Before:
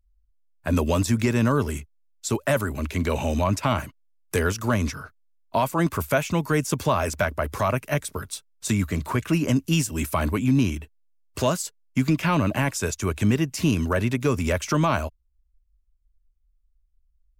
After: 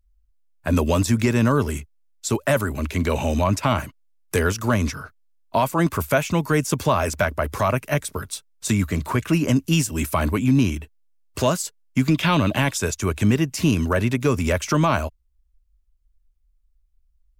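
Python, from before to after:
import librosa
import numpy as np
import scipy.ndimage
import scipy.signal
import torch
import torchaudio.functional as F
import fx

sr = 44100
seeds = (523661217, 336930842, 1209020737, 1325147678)

y = fx.peak_eq(x, sr, hz=3500.0, db=12.0, octaves=0.41, at=(12.14, 12.78))
y = y * librosa.db_to_amplitude(2.5)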